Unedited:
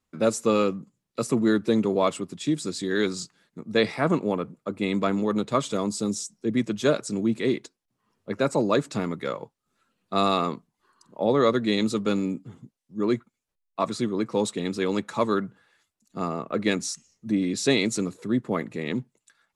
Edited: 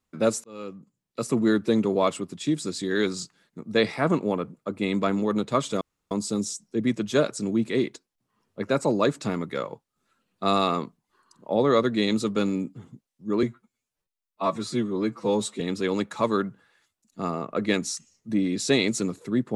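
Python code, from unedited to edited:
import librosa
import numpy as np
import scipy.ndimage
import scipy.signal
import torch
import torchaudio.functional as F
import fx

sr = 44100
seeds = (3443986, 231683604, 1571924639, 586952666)

y = fx.edit(x, sr, fx.fade_in_span(start_s=0.44, length_s=0.96),
    fx.insert_room_tone(at_s=5.81, length_s=0.3),
    fx.stretch_span(start_s=13.13, length_s=1.45, factor=1.5), tone=tone)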